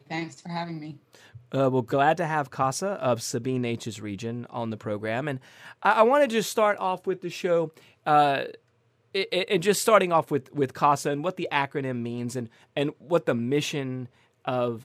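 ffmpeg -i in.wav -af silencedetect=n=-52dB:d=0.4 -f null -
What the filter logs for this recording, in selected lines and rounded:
silence_start: 8.56
silence_end: 9.15 | silence_duration: 0.58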